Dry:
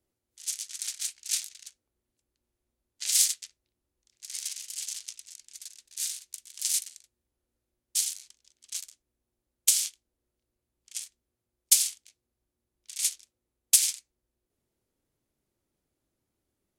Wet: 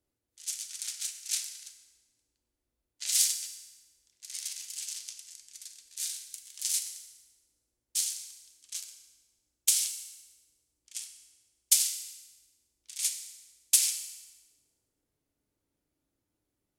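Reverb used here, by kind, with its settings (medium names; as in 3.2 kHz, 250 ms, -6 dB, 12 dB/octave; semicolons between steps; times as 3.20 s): FDN reverb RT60 1.3 s, high-frequency decay 0.85×, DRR 5.5 dB; trim -3 dB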